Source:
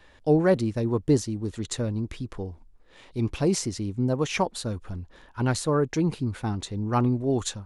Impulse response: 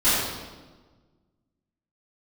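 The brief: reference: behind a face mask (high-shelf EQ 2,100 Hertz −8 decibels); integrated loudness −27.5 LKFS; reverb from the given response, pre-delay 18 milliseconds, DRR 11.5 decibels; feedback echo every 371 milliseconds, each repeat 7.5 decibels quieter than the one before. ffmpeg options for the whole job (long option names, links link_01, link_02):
-filter_complex "[0:a]aecho=1:1:371|742|1113|1484|1855:0.422|0.177|0.0744|0.0312|0.0131,asplit=2[link_01][link_02];[1:a]atrim=start_sample=2205,adelay=18[link_03];[link_02][link_03]afir=irnorm=-1:irlink=0,volume=-29.5dB[link_04];[link_01][link_04]amix=inputs=2:normalize=0,highshelf=frequency=2100:gain=-8,volume=-1.5dB"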